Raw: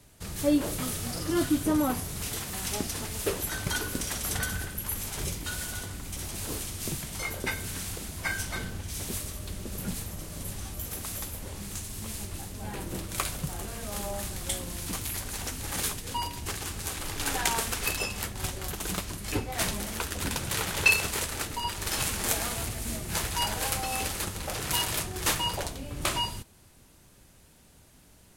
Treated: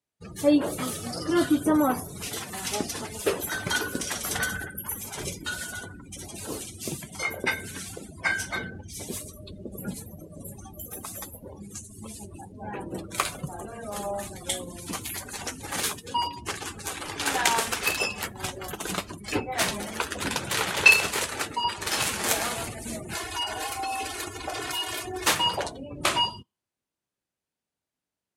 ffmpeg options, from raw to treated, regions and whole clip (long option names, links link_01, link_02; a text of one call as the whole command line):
ffmpeg -i in.wav -filter_complex "[0:a]asettb=1/sr,asplit=3[link_01][link_02][link_03];[link_01]atrim=end=23.134[link_04];[link_02]atrim=start=23.13:end=25.27,asetpts=PTS-STARTPTS,afade=type=in:duration=0.004:curve=qsin,afade=type=out:start_time=2.136:duration=0.004:curve=qsin,aecho=1:1:2.8:0.64,atrim=end_sample=94374,acompressor=threshold=-30dB:ratio=5:attack=3.2:release=140:knee=1:detection=peak[link_05];[link_03]atrim=start=25.266[link_06];[link_04][link_05]acrossfade=duration=0.004:curve1=hsin:curve2=qsin[link_07];[link_07][link_06]acrossfade=duration=0.004:curve1=qsin:curve2=hsin,highpass=frequency=310:poles=1,afftdn=noise_reduction=34:noise_floor=-41,highshelf=frequency=8700:gain=-8.5,volume=6.5dB" out.wav